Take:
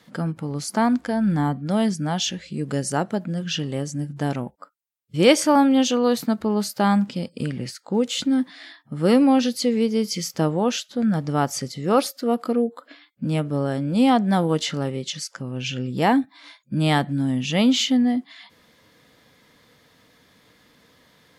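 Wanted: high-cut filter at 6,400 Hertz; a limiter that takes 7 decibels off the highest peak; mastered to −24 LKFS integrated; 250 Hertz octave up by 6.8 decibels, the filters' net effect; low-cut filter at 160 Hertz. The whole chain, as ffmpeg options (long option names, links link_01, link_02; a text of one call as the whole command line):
ffmpeg -i in.wav -af "highpass=160,lowpass=6400,equalizer=frequency=250:width_type=o:gain=8.5,volume=-5dB,alimiter=limit=-13dB:level=0:latency=1" out.wav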